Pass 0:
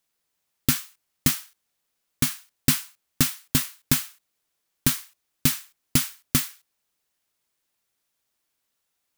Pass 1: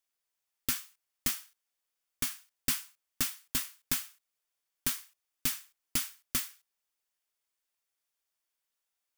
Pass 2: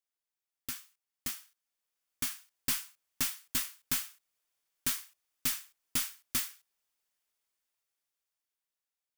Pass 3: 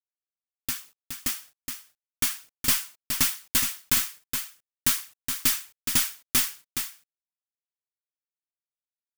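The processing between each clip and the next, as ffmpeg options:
-af "equalizer=f=140:w=0.55:g=-12.5,bandreject=f=4000:w=22,volume=0.398"
-af "dynaudnorm=f=350:g=11:m=3.76,aeval=exprs='(tanh(5.62*val(0)+0.2)-tanh(0.2))/5.62':c=same,volume=0.422"
-af "acrusher=bits=10:mix=0:aa=0.000001,aphaser=in_gain=1:out_gain=1:delay=3.4:decay=0.26:speed=1.2:type=triangular,aecho=1:1:419:0.447,volume=2.66"

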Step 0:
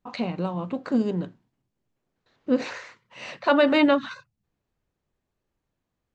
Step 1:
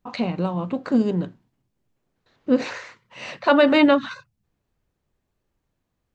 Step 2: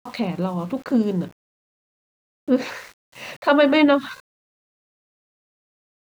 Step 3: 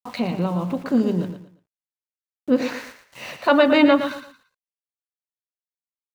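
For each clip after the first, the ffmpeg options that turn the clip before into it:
-af "lowshelf=f=130:g=3.5,volume=1.41"
-af "aeval=exprs='val(0)*gte(abs(val(0)),0.00841)':c=same"
-af "aecho=1:1:115|230|345:0.335|0.0971|0.0282"

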